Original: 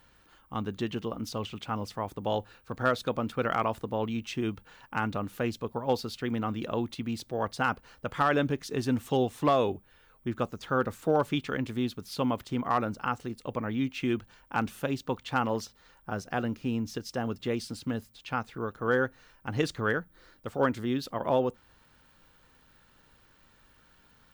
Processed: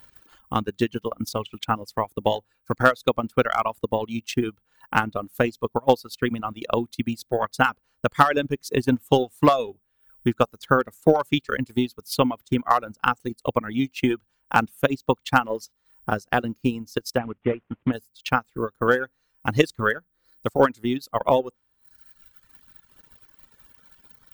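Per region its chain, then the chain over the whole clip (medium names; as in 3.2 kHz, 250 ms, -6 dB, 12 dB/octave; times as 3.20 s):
17.18–17.93 s: CVSD coder 16 kbps + distance through air 250 m
whole clip: treble shelf 8 kHz +11 dB; transient shaper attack +9 dB, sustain -9 dB; reverb removal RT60 1.5 s; trim +3.5 dB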